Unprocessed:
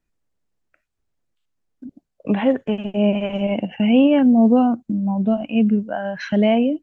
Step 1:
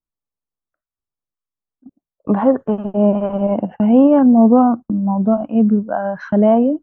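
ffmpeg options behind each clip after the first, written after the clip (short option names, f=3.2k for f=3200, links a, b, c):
-af "agate=range=-19dB:threshold=-32dB:ratio=16:detection=peak,highshelf=f=1.7k:t=q:w=3:g=-12.5,volume=3dB"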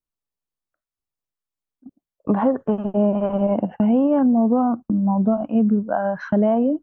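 -af "acompressor=threshold=-13dB:ratio=6,volume=-1dB"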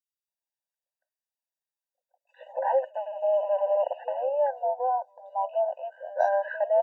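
-filter_complex "[0:a]acrossover=split=410|2600[a][b][c];[a]adelay=120[d];[b]adelay=280[e];[d][e][c]amix=inputs=3:normalize=0,afftfilt=real='re*eq(mod(floor(b*sr/1024/500),2),1)':imag='im*eq(mod(floor(b*sr/1024/500),2),1)':win_size=1024:overlap=0.75"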